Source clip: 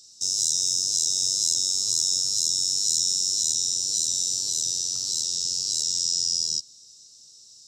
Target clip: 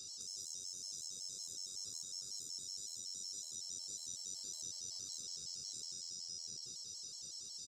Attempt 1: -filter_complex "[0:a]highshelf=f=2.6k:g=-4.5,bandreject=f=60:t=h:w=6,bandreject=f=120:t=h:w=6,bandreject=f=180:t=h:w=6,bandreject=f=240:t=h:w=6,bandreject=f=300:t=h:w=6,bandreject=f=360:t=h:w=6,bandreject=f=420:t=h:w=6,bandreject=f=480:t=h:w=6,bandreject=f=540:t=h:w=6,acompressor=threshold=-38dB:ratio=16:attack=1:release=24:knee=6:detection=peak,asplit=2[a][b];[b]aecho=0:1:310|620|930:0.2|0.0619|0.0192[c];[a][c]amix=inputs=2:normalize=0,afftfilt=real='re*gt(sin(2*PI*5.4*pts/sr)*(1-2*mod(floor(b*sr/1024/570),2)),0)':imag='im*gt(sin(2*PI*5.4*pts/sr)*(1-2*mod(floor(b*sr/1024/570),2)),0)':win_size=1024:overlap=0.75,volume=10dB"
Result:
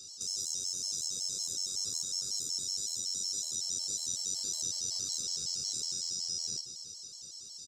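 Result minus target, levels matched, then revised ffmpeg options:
compressor: peak gain reduction -11 dB
-filter_complex "[0:a]highshelf=f=2.6k:g=-4.5,bandreject=f=60:t=h:w=6,bandreject=f=120:t=h:w=6,bandreject=f=180:t=h:w=6,bandreject=f=240:t=h:w=6,bandreject=f=300:t=h:w=6,bandreject=f=360:t=h:w=6,bandreject=f=420:t=h:w=6,bandreject=f=480:t=h:w=6,bandreject=f=540:t=h:w=6,acompressor=threshold=-49.5dB:ratio=16:attack=1:release=24:knee=6:detection=peak,asplit=2[a][b];[b]aecho=0:1:310|620|930:0.2|0.0619|0.0192[c];[a][c]amix=inputs=2:normalize=0,afftfilt=real='re*gt(sin(2*PI*5.4*pts/sr)*(1-2*mod(floor(b*sr/1024/570),2)),0)':imag='im*gt(sin(2*PI*5.4*pts/sr)*(1-2*mod(floor(b*sr/1024/570),2)),0)':win_size=1024:overlap=0.75,volume=10dB"

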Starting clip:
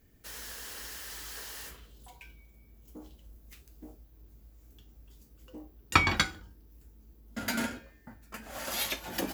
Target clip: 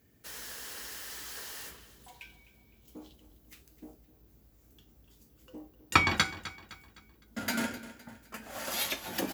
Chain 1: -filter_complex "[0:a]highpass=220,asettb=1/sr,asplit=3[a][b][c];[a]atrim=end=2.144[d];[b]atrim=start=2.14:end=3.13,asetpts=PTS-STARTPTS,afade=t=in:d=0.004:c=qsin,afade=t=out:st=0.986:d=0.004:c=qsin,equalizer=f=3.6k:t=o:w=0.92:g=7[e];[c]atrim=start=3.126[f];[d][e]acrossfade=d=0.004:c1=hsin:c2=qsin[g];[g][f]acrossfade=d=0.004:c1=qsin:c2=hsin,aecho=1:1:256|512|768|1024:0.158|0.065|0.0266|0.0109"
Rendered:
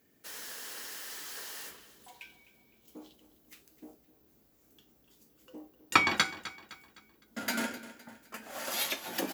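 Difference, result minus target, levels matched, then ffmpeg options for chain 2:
125 Hz band -9.0 dB
-filter_complex "[0:a]highpass=85,asettb=1/sr,asplit=3[a][b][c];[a]atrim=end=2.144[d];[b]atrim=start=2.14:end=3.13,asetpts=PTS-STARTPTS,afade=t=in:d=0.004:c=qsin,afade=t=out:st=0.986:d=0.004:c=qsin,equalizer=f=3.6k:t=o:w=0.92:g=7[e];[c]atrim=start=3.126[f];[d][e]acrossfade=d=0.004:c1=hsin:c2=qsin[g];[g][f]acrossfade=d=0.004:c1=qsin:c2=hsin,aecho=1:1:256|512|768|1024:0.158|0.065|0.0266|0.0109"

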